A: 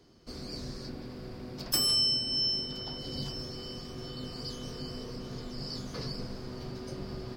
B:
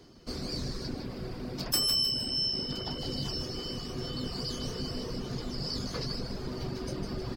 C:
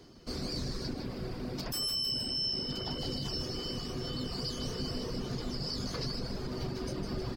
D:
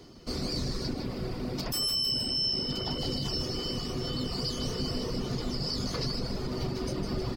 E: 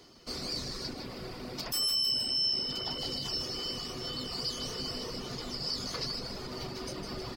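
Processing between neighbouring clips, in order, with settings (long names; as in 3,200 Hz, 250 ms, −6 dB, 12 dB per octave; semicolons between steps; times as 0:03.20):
reverb reduction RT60 0.89 s; in parallel at −2.5 dB: compressor whose output falls as the input rises −41 dBFS; on the sum: echo with shifted repeats 154 ms, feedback 35%, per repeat −66 Hz, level −7.5 dB
brickwall limiter −26 dBFS, peak gain reduction 11 dB
notch filter 1,600 Hz, Q 13; level +4 dB
low-shelf EQ 460 Hz −11 dB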